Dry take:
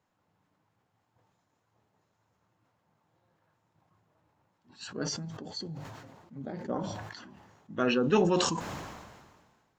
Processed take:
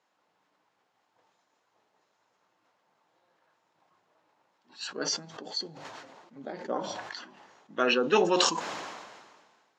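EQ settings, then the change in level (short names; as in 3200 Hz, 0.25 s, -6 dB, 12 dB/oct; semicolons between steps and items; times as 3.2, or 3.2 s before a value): BPF 370–5100 Hz; high shelf 3800 Hz +8.5 dB; +3.5 dB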